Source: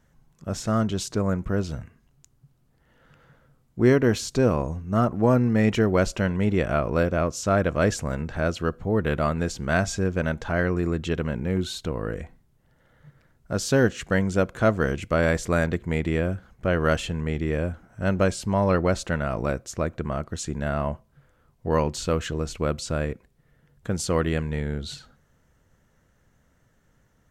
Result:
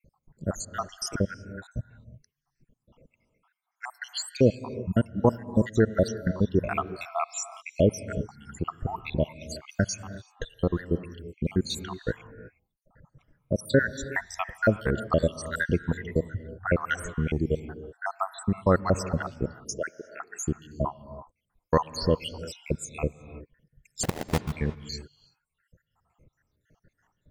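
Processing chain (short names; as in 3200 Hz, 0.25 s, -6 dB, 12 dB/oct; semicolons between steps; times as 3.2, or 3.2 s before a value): random spectral dropouts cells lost 82%; reverb removal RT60 1.5 s; 1.27–1.7 tilt -3 dB/oct; 19.64–20.13 HPF 720 Hz 12 dB/oct; in parallel at 0 dB: compressor, threshold -32 dBFS, peak gain reduction 16 dB; 24.03–24.53 on the sum: sample-rate reducer 1300 Hz, jitter 20%; on a send at -12.5 dB: reverb, pre-delay 3 ms; on the sum: mismatched tape noise reduction decoder only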